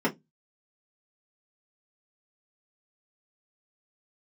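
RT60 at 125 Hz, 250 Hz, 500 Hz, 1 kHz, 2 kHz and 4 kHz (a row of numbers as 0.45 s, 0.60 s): 0.30 s, 0.25 s, 0.20 s, 0.15 s, 0.10 s, 0.10 s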